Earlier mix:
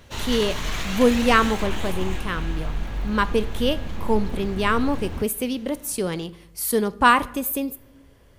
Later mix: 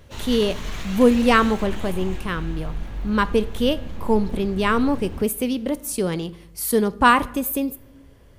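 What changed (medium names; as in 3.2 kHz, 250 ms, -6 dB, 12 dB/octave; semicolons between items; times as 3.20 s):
background -6.0 dB; master: add bass shelf 470 Hz +4 dB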